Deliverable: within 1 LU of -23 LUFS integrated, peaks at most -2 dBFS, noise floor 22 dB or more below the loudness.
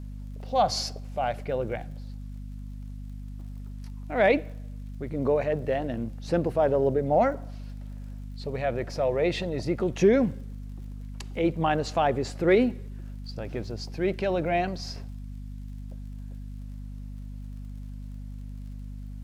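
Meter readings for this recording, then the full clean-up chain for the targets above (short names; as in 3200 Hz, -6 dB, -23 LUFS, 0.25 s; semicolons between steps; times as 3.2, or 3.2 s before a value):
ticks 48/s; hum 50 Hz; harmonics up to 250 Hz; hum level -35 dBFS; loudness -27.0 LUFS; peak -10.0 dBFS; loudness target -23.0 LUFS
-> de-click; notches 50/100/150/200/250 Hz; gain +4 dB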